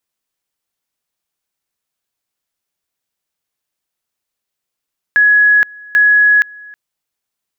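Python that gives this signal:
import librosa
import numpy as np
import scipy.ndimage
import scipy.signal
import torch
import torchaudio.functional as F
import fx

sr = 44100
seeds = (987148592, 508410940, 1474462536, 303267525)

y = fx.two_level_tone(sr, hz=1680.0, level_db=-6.0, drop_db=25.5, high_s=0.47, low_s=0.32, rounds=2)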